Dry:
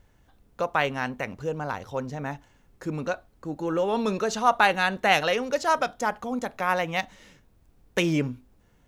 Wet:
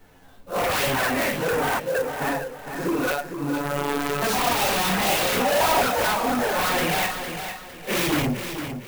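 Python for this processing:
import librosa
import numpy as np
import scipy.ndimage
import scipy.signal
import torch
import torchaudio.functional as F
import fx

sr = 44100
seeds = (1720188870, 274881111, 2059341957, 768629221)

p1 = fx.phase_scramble(x, sr, seeds[0], window_ms=200)
p2 = fx.vowel_filter(p1, sr, vowel='e', at=(1.78, 2.2), fade=0.02)
p3 = fx.env_flanger(p2, sr, rest_ms=11.7, full_db=-19.5)
p4 = fx.peak_eq(p3, sr, hz=62.0, db=-12.0, octaves=1.7)
p5 = fx.fold_sine(p4, sr, drive_db=16, ceiling_db=-16.5)
p6 = p4 + (p5 * 10.0 ** (-6.0 / 20.0))
p7 = fx.robotise(p6, sr, hz=143.0, at=(3.12, 4.22))
p8 = fx.peak_eq(p7, sr, hz=800.0, db=10.5, octaves=0.55, at=(5.4, 5.82))
p9 = p8 + fx.echo_feedback(p8, sr, ms=457, feedback_pct=32, wet_db=-8.5, dry=0)
y = fx.clock_jitter(p9, sr, seeds[1], jitter_ms=0.032)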